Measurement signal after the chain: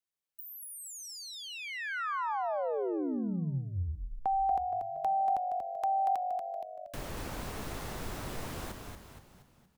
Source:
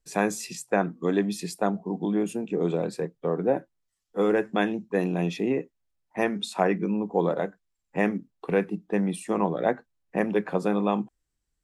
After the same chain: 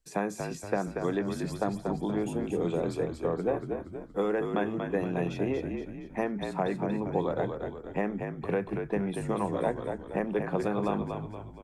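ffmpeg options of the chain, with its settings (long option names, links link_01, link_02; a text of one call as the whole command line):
ffmpeg -i in.wav -filter_complex "[0:a]acrossover=split=500|1600[link_01][link_02][link_03];[link_01]acompressor=threshold=-31dB:ratio=4[link_04];[link_02]acompressor=threshold=-31dB:ratio=4[link_05];[link_03]acompressor=threshold=-48dB:ratio=4[link_06];[link_04][link_05][link_06]amix=inputs=3:normalize=0,asplit=7[link_07][link_08][link_09][link_10][link_11][link_12][link_13];[link_08]adelay=235,afreqshift=-48,volume=-5.5dB[link_14];[link_09]adelay=470,afreqshift=-96,volume=-11.9dB[link_15];[link_10]adelay=705,afreqshift=-144,volume=-18.3dB[link_16];[link_11]adelay=940,afreqshift=-192,volume=-24.6dB[link_17];[link_12]adelay=1175,afreqshift=-240,volume=-31dB[link_18];[link_13]adelay=1410,afreqshift=-288,volume=-37.4dB[link_19];[link_07][link_14][link_15][link_16][link_17][link_18][link_19]amix=inputs=7:normalize=0" out.wav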